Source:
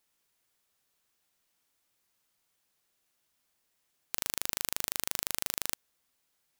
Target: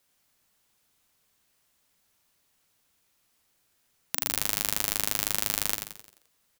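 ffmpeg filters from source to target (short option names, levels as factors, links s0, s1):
-filter_complex "[0:a]afreqshift=-300,asplit=7[s0][s1][s2][s3][s4][s5][s6];[s1]adelay=87,afreqshift=-120,volume=0.473[s7];[s2]adelay=174,afreqshift=-240,volume=0.221[s8];[s3]adelay=261,afreqshift=-360,volume=0.105[s9];[s4]adelay=348,afreqshift=-480,volume=0.049[s10];[s5]adelay=435,afreqshift=-600,volume=0.0232[s11];[s6]adelay=522,afreqshift=-720,volume=0.0108[s12];[s0][s7][s8][s9][s10][s11][s12]amix=inputs=7:normalize=0,volume=1.78"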